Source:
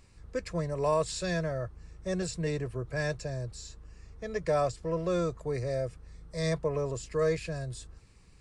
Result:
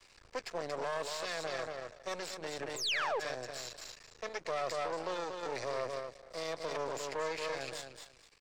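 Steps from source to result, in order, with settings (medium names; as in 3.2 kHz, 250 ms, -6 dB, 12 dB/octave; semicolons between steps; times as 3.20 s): treble shelf 2.9 kHz +10.5 dB; feedback delay 232 ms, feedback 20%, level -6.5 dB; random-step tremolo; painted sound fall, 2.76–3.20 s, 370–8300 Hz -25 dBFS; peak limiter -27 dBFS, peak gain reduction 10.5 dB; half-wave rectifier; three-band isolator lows -18 dB, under 390 Hz, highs -16 dB, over 5.7 kHz; trim +5.5 dB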